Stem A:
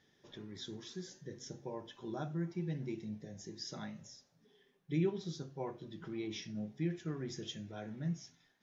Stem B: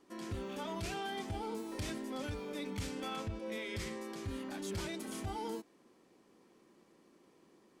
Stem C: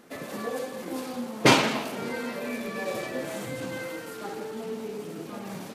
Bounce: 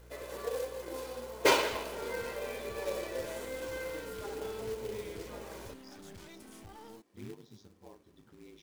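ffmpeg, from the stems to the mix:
-filter_complex "[0:a]aeval=exprs='val(0)*sin(2*PI*50*n/s)':c=same,adelay=2250,volume=0.299[s0];[1:a]acompressor=threshold=0.00708:ratio=2,aeval=exprs='clip(val(0),-1,0.00355)':c=same,adelay=1400,volume=0.562[s1];[2:a]lowshelf=f=260:t=q:w=1.5:g=-12.5,aeval=exprs='val(0)+0.00398*(sin(2*PI*60*n/s)+sin(2*PI*2*60*n/s)/2+sin(2*PI*3*60*n/s)/3+sin(2*PI*4*60*n/s)/4+sin(2*PI*5*60*n/s)/5)':c=same,aecho=1:1:2:0.42,volume=0.398[s2];[s0][s1][s2]amix=inputs=3:normalize=0,acrusher=bits=3:mode=log:mix=0:aa=0.000001"

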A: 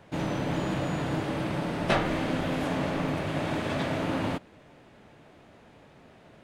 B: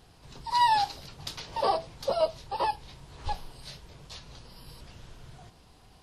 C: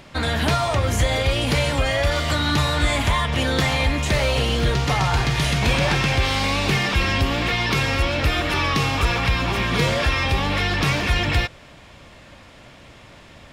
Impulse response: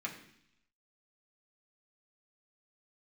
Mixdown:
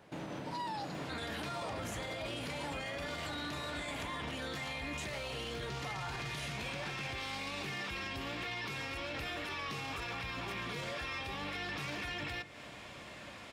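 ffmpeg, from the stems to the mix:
-filter_complex "[0:a]alimiter=limit=0.0708:level=0:latency=1:release=182,acompressor=threshold=0.0158:ratio=2,volume=0.596[s0];[1:a]volume=0.224[s1];[2:a]acompressor=threshold=0.0355:ratio=6,adelay=950,volume=0.631,asplit=2[s2][s3];[s3]volume=0.299[s4];[3:a]atrim=start_sample=2205[s5];[s4][s5]afir=irnorm=-1:irlink=0[s6];[s0][s1][s2][s6]amix=inputs=4:normalize=0,highpass=f=150:p=1,alimiter=level_in=2.51:limit=0.0631:level=0:latency=1:release=11,volume=0.398"

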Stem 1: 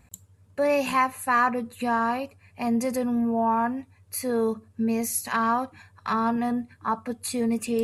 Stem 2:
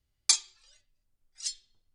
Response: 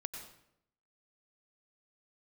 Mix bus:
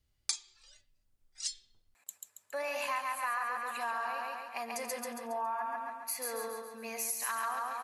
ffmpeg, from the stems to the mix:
-filter_complex "[0:a]highpass=900,flanger=delay=2.8:depth=7:regen=84:speed=1.1:shape=sinusoidal,adelay=1950,volume=1.26,asplit=2[s0][s1];[s1]volume=0.708[s2];[1:a]volume=1.19[s3];[s2]aecho=0:1:138|276|414|552|690|828|966:1|0.48|0.23|0.111|0.0531|0.0255|0.0122[s4];[s0][s3][s4]amix=inputs=3:normalize=0,acompressor=threshold=0.0224:ratio=4"

